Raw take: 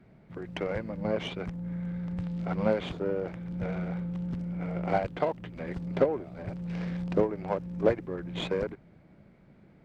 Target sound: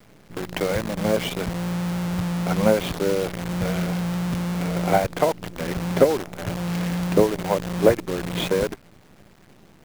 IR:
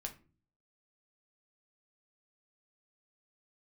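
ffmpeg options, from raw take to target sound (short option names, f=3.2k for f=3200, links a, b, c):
-af "acrusher=bits=7:dc=4:mix=0:aa=0.000001,volume=8dB"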